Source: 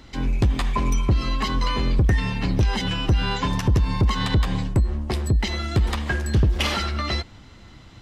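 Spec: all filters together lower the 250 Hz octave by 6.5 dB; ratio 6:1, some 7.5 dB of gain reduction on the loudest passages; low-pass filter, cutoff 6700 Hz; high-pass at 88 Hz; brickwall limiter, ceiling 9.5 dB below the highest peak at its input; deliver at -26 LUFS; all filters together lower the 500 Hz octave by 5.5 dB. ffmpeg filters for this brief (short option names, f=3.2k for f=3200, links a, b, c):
-af "highpass=88,lowpass=6.7k,equalizer=f=250:t=o:g=-8.5,equalizer=f=500:t=o:g=-4,acompressor=threshold=-26dB:ratio=6,volume=7.5dB,alimiter=limit=-16.5dB:level=0:latency=1"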